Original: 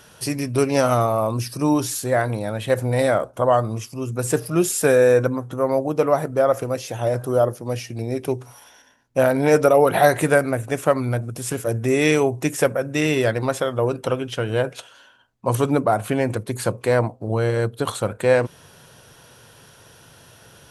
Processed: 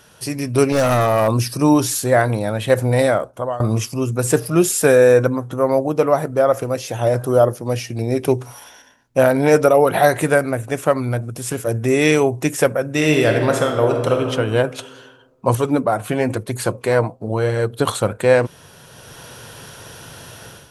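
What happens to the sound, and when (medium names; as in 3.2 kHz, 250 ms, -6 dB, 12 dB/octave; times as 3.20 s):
0.72–1.28 s: hard clipper -17.5 dBFS
2.93–3.60 s: fade out, to -22.5 dB
12.91–14.29 s: reverb throw, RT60 1.7 s, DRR 3 dB
15.54–17.70 s: flange 1 Hz, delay 1 ms, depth 5.9 ms, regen +58%
whole clip: level rider; trim -1 dB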